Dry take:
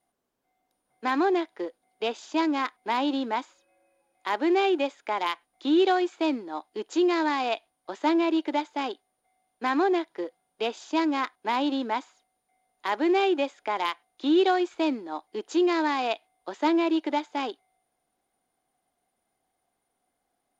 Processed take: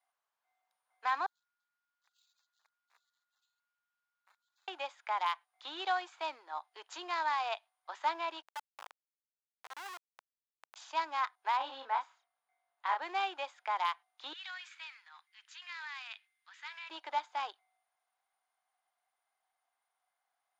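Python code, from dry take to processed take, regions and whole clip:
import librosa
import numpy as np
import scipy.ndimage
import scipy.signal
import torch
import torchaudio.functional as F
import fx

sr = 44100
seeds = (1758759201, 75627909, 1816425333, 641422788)

y = fx.chain(x, sr, fx.cheby2_highpass(hz=2600.0, order=4, stop_db=70),
    fx.resample_bad(factor=4, down='none', up='hold'), at=(1.26, 4.68))
y = fx.chain(y, sr, fx.lowpass(hz=6200.0, slope=12),
    fx.level_steps(step_db=24),
    fx.schmitt(flips_db=-41.0), at=(8.42, 10.76))
y = fx.chain(y, sr, fx.high_shelf(hz=4300.0, db=-11.5),
    fx.doubler(ms=30.0, db=-4.0), at=(11.57, 13.02))
y = fx.chain(y, sr, fx.ladder_highpass(hz=1500.0, resonance_pct=35),
    fx.transient(attack_db=-1, sustain_db=8), at=(14.33, 16.9))
y = fx.dynamic_eq(y, sr, hz=2100.0, q=0.95, threshold_db=-41.0, ratio=4.0, max_db=-4)
y = scipy.signal.sosfilt(scipy.signal.butter(4, 930.0, 'highpass', fs=sr, output='sos'), y)
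y = fx.tilt_eq(y, sr, slope=-3.0)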